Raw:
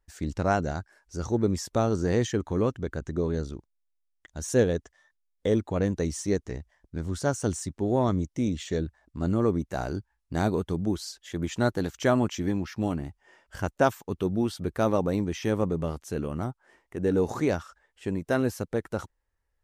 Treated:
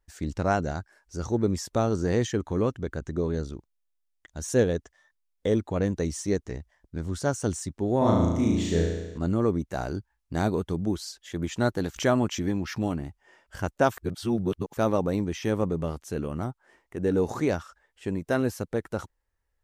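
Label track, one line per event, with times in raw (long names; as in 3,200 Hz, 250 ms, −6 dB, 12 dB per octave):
7.980000	9.180000	flutter between parallel walls apart 6.1 metres, dies away in 1.1 s
11.960000	12.850000	upward compression, threshold −25 dBFS
13.970000	14.770000	reverse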